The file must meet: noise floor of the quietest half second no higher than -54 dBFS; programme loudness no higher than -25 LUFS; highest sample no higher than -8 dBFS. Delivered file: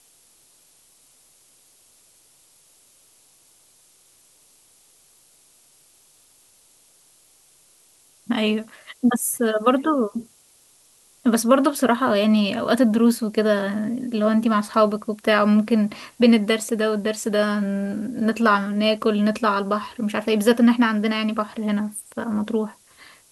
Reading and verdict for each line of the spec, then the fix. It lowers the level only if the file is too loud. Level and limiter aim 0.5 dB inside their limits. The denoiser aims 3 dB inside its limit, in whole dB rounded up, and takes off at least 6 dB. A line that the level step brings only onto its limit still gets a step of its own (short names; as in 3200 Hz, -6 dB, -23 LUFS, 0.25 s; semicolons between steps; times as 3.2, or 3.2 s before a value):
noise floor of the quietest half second -57 dBFS: OK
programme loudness -21.0 LUFS: fail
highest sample -4.5 dBFS: fail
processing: gain -4.5 dB